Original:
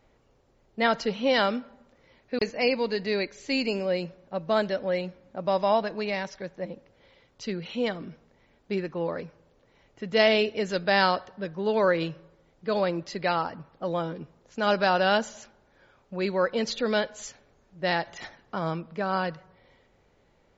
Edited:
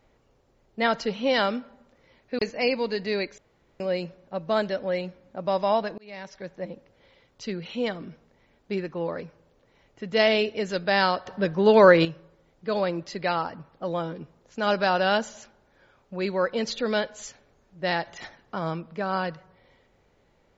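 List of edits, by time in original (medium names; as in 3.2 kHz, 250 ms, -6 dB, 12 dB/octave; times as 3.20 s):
3.38–3.80 s: room tone
5.98–6.51 s: fade in
11.26–12.05 s: gain +8.5 dB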